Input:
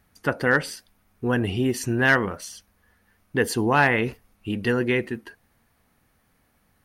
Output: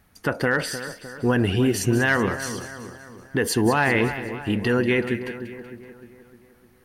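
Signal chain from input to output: limiter -15.5 dBFS, peak gain reduction 7.5 dB; split-band echo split 1700 Hz, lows 0.305 s, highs 0.189 s, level -11 dB; gain +4 dB

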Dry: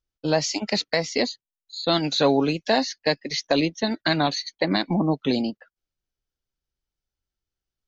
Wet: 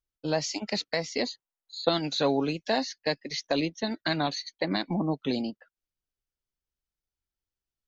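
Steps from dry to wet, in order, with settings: 1.26–1.89 bell 810 Hz +11 dB 2.4 oct; gain -6 dB

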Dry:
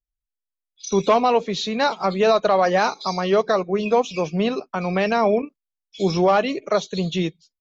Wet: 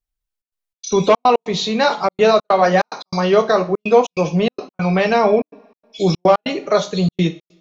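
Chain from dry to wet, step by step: two-slope reverb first 0.33 s, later 1.6 s, from -26 dB, DRR 5.5 dB; step gate "xxxx.xx.xxx.x.xx" 144 bpm -60 dB; gain +3.5 dB

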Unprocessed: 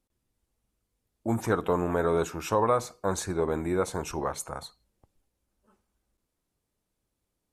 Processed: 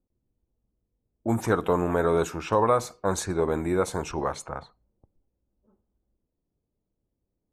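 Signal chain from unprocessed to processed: low-pass opened by the level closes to 530 Hz, open at -26 dBFS; gain +2.5 dB

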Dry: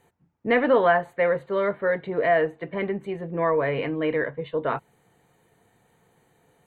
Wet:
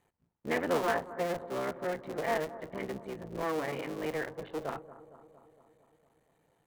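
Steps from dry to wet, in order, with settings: cycle switcher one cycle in 3, muted; 3.45–4.02 HPF 110 Hz; on a send: analogue delay 0.229 s, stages 2048, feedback 64%, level -15 dB; on the sum: gain -9 dB

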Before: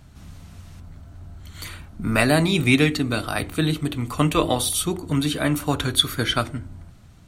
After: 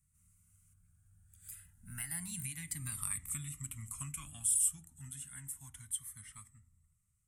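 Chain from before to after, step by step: Doppler pass-by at 2.98, 28 m/s, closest 3.6 m; Chebyshev band-stop 150–1300 Hz, order 2; bell 2000 Hz +5.5 dB 0.23 oct; compressor 10:1, threshold -39 dBFS, peak gain reduction 15 dB; resonant high shelf 6200 Hz +13.5 dB, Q 3; cascading phaser rising 0.29 Hz; gain -1.5 dB

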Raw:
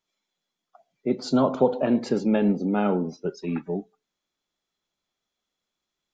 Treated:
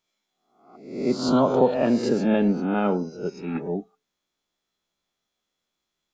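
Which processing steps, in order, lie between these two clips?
spectral swells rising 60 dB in 0.65 s; 2.6–3.55 upward expander 1.5:1, over -35 dBFS

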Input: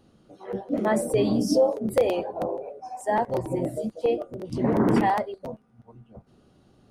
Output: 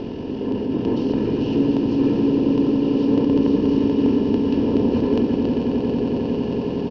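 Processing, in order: per-bin compression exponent 0.2; fifteen-band EQ 100 Hz -11 dB, 250 Hz -12 dB, 2500 Hz -10 dB; pitch shift -11 st; air absorption 240 m; on a send: swelling echo 90 ms, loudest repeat 8, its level -11 dB; on the sum: gain -4.5 dB

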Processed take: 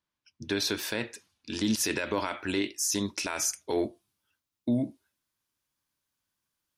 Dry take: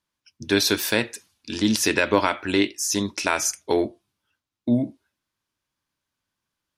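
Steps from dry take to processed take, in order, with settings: high shelf 7300 Hz -8.5 dB, from 1.54 s +3.5 dB, from 3.83 s +11 dB; limiter -13 dBFS, peak gain reduction 10.5 dB; gain -4.5 dB

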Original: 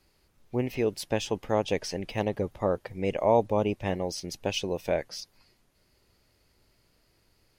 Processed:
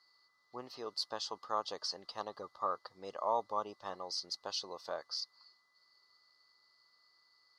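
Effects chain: whine 2000 Hz -54 dBFS; double band-pass 2300 Hz, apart 1.9 oct; gain +6.5 dB

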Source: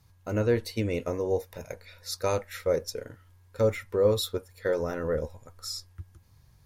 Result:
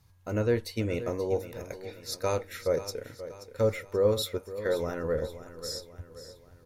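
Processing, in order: feedback echo 0.531 s, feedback 48%, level -13.5 dB; gain -1.5 dB

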